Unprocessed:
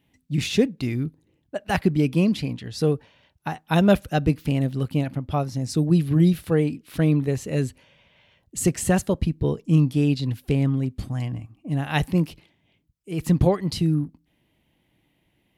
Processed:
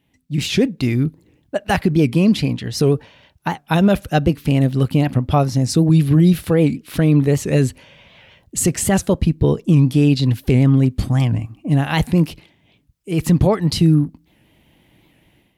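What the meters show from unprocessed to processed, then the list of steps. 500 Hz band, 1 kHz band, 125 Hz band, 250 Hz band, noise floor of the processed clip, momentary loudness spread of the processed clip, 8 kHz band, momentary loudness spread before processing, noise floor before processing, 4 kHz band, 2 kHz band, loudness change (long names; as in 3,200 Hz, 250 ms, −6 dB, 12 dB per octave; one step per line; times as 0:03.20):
+5.0 dB, +6.0 dB, +7.0 dB, +6.0 dB, −60 dBFS, 9 LU, +8.0 dB, 11 LU, −69 dBFS, +7.0 dB, +5.0 dB, +6.0 dB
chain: automatic gain control gain up to 11 dB
brickwall limiter −7.5 dBFS, peak gain reduction 6.5 dB
wow of a warped record 78 rpm, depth 160 cents
level +1.5 dB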